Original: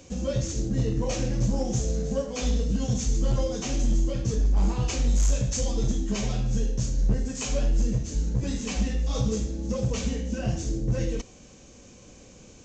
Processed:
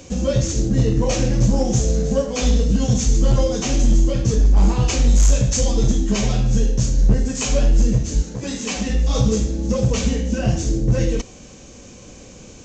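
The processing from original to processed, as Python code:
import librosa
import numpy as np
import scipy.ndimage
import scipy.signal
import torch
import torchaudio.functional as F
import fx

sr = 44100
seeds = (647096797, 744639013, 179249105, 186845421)

y = fx.highpass(x, sr, hz=fx.line((8.21, 520.0), (8.88, 230.0)), slope=6, at=(8.21, 8.88), fade=0.02)
y = y * librosa.db_to_amplitude(8.5)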